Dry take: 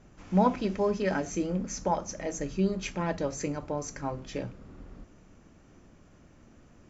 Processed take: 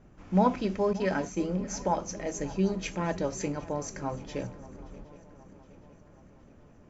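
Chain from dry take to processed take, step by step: 0.93–1.54 s: expander -32 dBFS; shuffle delay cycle 768 ms, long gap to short 3:1, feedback 54%, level -18.5 dB; tape noise reduction on one side only decoder only

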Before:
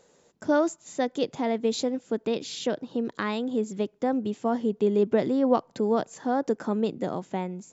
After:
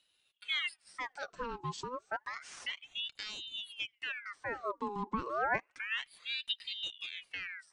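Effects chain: flange 0.58 Hz, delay 2.4 ms, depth 4.4 ms, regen +26%; ring modulator with a swept carrier 2 kHz, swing 70%, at 0.3 Hz; trim -6.5 dB

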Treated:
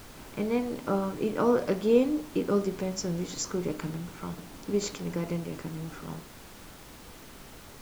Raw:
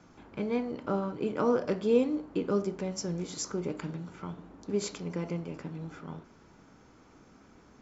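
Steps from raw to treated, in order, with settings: added noise pink -51 dBFS; trim +2.5 dB

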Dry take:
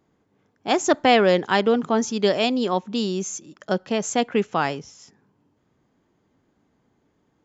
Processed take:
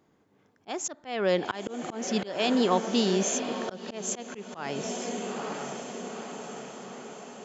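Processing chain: compression 6:1, threshold -20 dBFS, peak gain reduction 9 dB; bass shelf 110 Hz -7.5 dB; on a send: echo that smears into a reverb 921 ms, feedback 60%, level -10 dB; on the sum: slow attack 287 ms; trim +1.5 dB

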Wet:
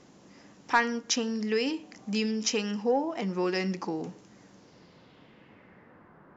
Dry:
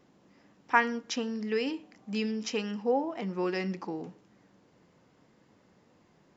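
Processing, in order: in parallel at +2 dB: compression, threshold -41 dBFS, peak gain reduction 22 dB; on the sum: saturation -10.5 dBFS, distortion -22 dB; low-pass sweep 6.7 kHz -> 1.4 kHz, 4.51–6.12 s

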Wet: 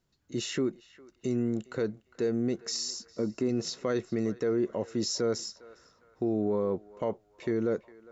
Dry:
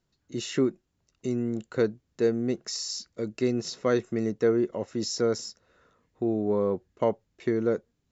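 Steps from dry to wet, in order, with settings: 2.90–3.49 s: graphic EQ 250/1000/2000/4000 Hz +5/+6/-4/-8 dB; peak limiter -20 dBFS, peak gain reduction 8 dB; band-passed feedback delay 406 ms, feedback 45%, band-pass 1.4 kHz, level -16.5 dB

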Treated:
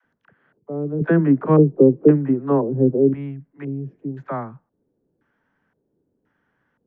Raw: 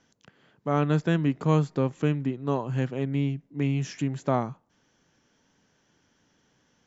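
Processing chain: 0.97–3.10 s: peaking EQ 330 Hz +14.5 dB 2.9 oct; LFO low-pass square 0.96 Hz 420–1600 Hz; phase dispersion lows, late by 48 ms, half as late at 410 Hz; low-pass that closes with the level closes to 3 kHz, closed at -9.5 dBFS; trim -4 dB

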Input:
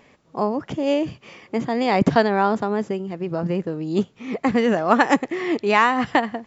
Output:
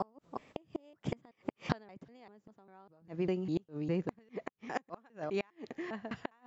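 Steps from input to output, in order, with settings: slices played last to first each 194 ms, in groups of 3; Doppler pass-by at 1.81 s, 15 m/s, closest 13 m; inverted gate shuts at -20 dBFS, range -34 dB; trim -1 dB

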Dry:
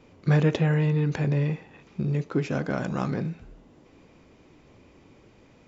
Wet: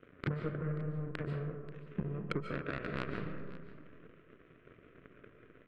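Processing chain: coarse spectral quantiser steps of 15 dB; low-pass that closes with the level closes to 730 Hz, closed at -20.5 dBFS; peaking EQ 600 Hz +4.5 dB 1.1 oct; in parallel at +2 dB: peak limiter -23 dBFS, peak gain reduction 12 dB; on the sum: cabinet simulation 110–3300 Hz, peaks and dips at 130 Hz +4 dB, 210 Hz -5 dB, 430 Hz +5 dB, 760 Hz +7 dB, 1.4 kHz +7 dB, 2.2 kHz -7 dB; compression 6:1, threshold -38 dBFS, peak gain reduction 24 dB; power-law waveshaper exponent 3; static phaser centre 2 kHz, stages 4; saturation -40 dBFS, distortion -14 dB; on a send: delay 535 ms -17.5 dB; on the sum: algorithmic reverb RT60 1.3 s, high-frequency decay 0.4×, pre-delay 105 ms, DRR 5 dB; trim +16 dB

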